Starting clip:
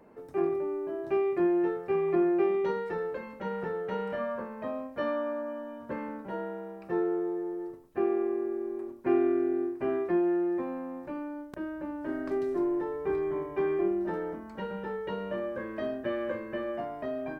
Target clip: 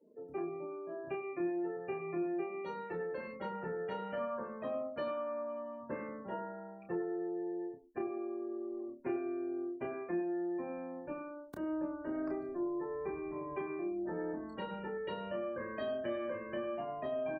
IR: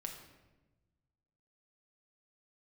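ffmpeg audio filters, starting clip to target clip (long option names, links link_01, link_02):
-filter_complex "[0:a]acrossover=split=120|620[link_01][link_02][link_03];[link_03]crystalizer=i=3.5:c=0[link_04];[link_01][link_02][link_04]amix=inputs=3:normalize=0,acompressor=threshold=-33dB:ratio=4,asplit=2[link_05][link_06];[link_06]aecho=0:1:96|192|288|384:0.299|0.113|0.0431|0.0164[link_07];[link_05][link_07]amix=inputs=2:normalize=0,afftdn=noise_reduction=36:noise_floor=-46,equalizer=frequency=1700:width_type=o:width=0.6:gain=-3,asplit=2[link_08][link_09];[link_09]adelay=29,volume=-4.5dB[link_10];[link_08][link_10]amix=inputs=2:normalize=0,volume=-3.5dB"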